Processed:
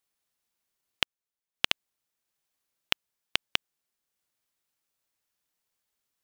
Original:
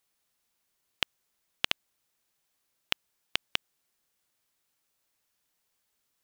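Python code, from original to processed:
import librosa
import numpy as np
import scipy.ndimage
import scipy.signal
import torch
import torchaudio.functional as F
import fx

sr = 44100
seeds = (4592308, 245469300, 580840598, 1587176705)

y = fx.transient(x, sr, attack_db=8, sustain_db=fx.steps((0.0, -11.0), (1.65, -2.0)))
y = y * librosa.db_to_amplitude(-5.0)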